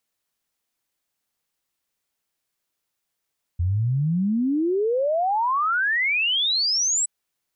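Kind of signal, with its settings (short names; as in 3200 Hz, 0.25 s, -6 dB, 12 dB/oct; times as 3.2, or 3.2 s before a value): log sweep 83 Hz -> 8000 Hz 3.47 s -19 dBFS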